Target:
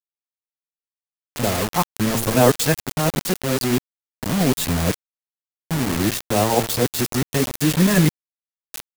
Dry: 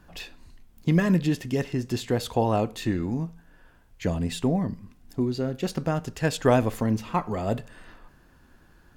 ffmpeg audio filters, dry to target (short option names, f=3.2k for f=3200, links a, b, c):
-af "areverse,bandreject=f=112.6:t=h:w=4,bandreject=f=225.2:t=h:w=4,bandreject=f=337.8:t=h:w=4,bandreject=f=450.4:t=h:w=4,bandreject=f=563:t=h:w=4,bandreject=f=675.6:t=h:w=4,bandreject=f=788.2:t=h:w=4,bandreject=f=900.8:t=h:w=4,bandreject=f=1.0134k:t=h:w=4,bandreject=f=1.126k:t=h:w=4,bandreject=f=1.2386k:t=h:w=4,bandreject=f=1.3512k:t=h:w=4,bandreject=f=1.4638k:t=h:w=4,bandreject=f=1.5764k:t=h:w=4,bandreject=f=1.689k:t=h:w=4,bandreject=f=1.8016k:t=h:w=4,bandreject=f=1.9142k:t=h:w=4,bandreject=f=2.0268k:t=h:w=4,acrusher=bits=4:mix=0:aa=0.000001,highshelf=f=5.8k:g=7.5,volume=5dB"